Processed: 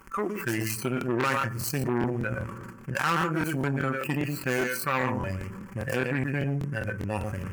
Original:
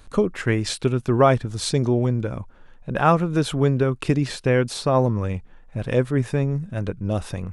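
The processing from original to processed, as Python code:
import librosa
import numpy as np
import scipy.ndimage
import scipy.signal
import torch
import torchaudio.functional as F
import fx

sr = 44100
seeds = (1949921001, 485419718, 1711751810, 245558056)

y = scipy.signal.medfilt(x, 25)
y = y + 10.0 ** (-7.5 / 20.0) * np.pad(y, (int(116 * sr / 1000.0), 0))[:len(y)]
y = fx.leveller(y, sr, passes=2)
y = fx.high_shelf(y, sr, hz=8600.0, db=3.5)
y = fx.fixed_phaser(y, sr, hz=1600.0, stages=4)
y = fx.rev_fdn(y, sr, rt60_s=0.91, lf_ratio=1.35, hf_ratio=0.45, size_ms=83.0, drr_db=14.0)
y = fx.noise_reduce_blind(y, sr, reduce_db=16)
y = y + 0.45 * np.pad(y, (int(5.2 * sr / 1000.0), 0))[:len(y)]
y = fx.cheby_harmonics(y, sr, harmonics=(4, 5, 7), levels_db=(-17, -25, -23), full_scale_db=-6.0)
y = fx.highpass(y, sr, hz=840.0, slope=6)
y = fx.buffer_crackle(y, sr, first_s=0.99, period_s=0.2, block=1024, kind='repeat')
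y = fx.env_flatten(y, sr, amount_pct=70)
y = y * 10.0 ** (-6.0 / 20.0)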